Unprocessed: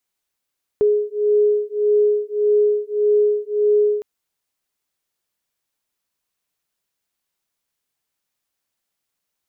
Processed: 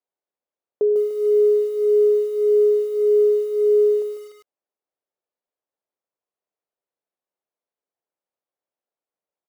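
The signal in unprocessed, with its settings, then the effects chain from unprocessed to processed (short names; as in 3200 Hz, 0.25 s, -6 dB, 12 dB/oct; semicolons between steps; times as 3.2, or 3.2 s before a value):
beating tones 417 Hz, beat 1.7 Hz, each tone -17.5 dBFS 3.21 s
band-pass 540 Hz, Q 1.5; echo 98 ms -22 dB; lo-fi delay 0.148 s, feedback 35%, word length 7-bit, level -9 dB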